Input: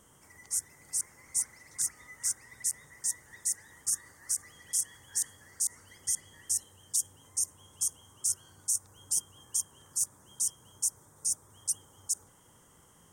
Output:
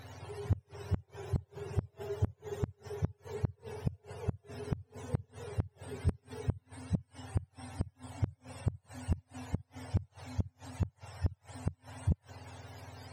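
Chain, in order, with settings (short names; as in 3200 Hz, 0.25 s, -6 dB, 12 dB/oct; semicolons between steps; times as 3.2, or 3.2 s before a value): spectrum mirrored in octaves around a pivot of 900 Hz; flipped gate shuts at -19 dBFS, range -32 dB; overdrive pedal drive 22 dB, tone 3400 Hz, clips at -18 dBFS; gain +1 dB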